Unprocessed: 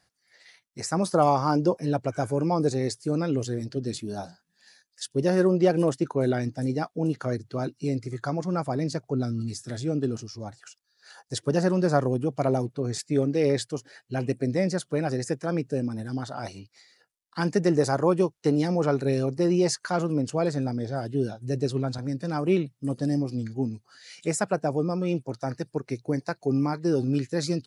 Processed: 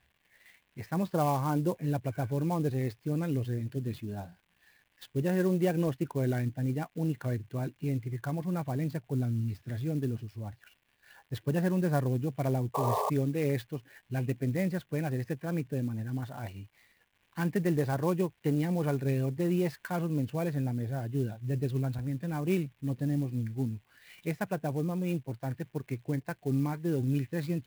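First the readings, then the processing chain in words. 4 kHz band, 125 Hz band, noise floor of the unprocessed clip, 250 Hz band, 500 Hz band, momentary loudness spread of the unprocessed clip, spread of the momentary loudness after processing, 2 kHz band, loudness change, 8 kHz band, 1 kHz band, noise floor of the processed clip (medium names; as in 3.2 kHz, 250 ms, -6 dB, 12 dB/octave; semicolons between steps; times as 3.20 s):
-11.5 dB, -1.5 dB, -74 dBFS, -5.5 dB, -8.5 dB, 10 LU, 9 LU, -5.0 dB, -5.0 dB, -12.5 dB, -7.0 dB, -72 dBFS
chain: peaking EQ 62 Hz +12.5 dB 0.93 oct; crackle 340 per s -46 dBFS; low-pass 3 kHz 24 dB/octave; painted sound noise, 12.74–13.10 s, 390–1200 Hz -22 dBFS; peaking EQ 530 Hz -9 dB 2.9 oct; band-stop 1.3 kHz, Q 5.2; sampling jitter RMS 0.028 ms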